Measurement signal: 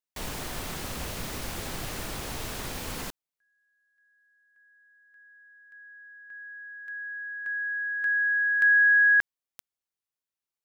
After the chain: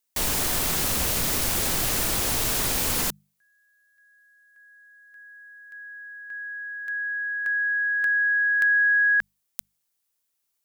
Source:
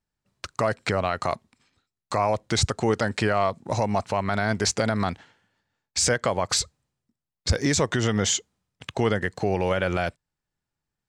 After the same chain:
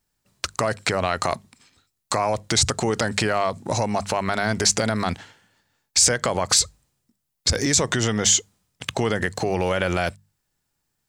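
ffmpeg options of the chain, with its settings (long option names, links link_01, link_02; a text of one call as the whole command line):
ffmpeg -i in.wav -af "acompressor=threshold=-33dB:ratio=2.5:attack=25:release=27:detection=rms,highshelf=frequency=5400:gain=10.5,bandreject=frequency=50:width_type=h:width=6,bandreject=frequency=100:width_type=h:width=6,bandreject=frequency=150:width_type=h:width=6,bandreject=frequency=200:width_type=h:width=6,volume=7dB" out.wav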